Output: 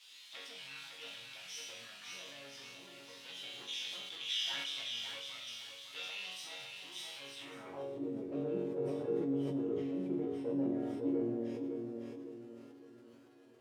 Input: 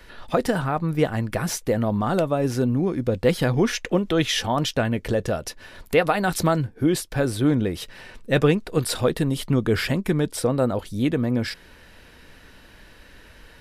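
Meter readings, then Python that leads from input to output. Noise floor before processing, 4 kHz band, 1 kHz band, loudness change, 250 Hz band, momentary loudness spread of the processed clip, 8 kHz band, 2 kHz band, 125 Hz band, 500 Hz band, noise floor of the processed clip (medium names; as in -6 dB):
-49 dBFS, -8.0 dB, -25.0 dB, -16.5 dB, -15.5 dB, 14 LU, -17.5 dB, -17.5 dB, -26.0 dB, -17.0 dB, -57 dBFS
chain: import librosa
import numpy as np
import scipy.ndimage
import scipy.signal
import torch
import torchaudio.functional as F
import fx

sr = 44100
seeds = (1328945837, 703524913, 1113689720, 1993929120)

y = fx.lower_of_two(x, sr, delay_ms=0.35)
y = fx.low_shelf(y, sr, hz=330.0, db=-2.5)
y = fx.doubler(y, sr, ms=15.0, db=-9.5)
y = fx.dmg_noise_colour(y, sr, seeds[0], colour='white', level_db=-42.0)
y = fx.quant_dither(y, sr, seeds[1], bits=8, dither='none')
y = fx.env_flanger(y, sr, rest_ms=11.8, full_db=-18.0)
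y = fx.highpass(y, sr, hz=140.0, slope=6)
y = 10.0 ** (-24.0 / 20.0) * np.tanh(y / 10.0 ** (-24.0 / 20.0))
y = fx.resonator_bank(y, sr, root=42, chord='major', decay_s=0.77)
y = fx.echo_feedback(y, sr, ms=557, feedback_pct=39, wet_db=-5.5)
y = fx.filter_sweep_bandpass(y, sr, from_hz=3500.0, to_hz=360.0, start_s=7.35, end_s=8.02, q=2.4)
y = fx.sustainer(y, sr, db_per_s=23.0)
y = y * 10.0 ** (14.0 / 20.0)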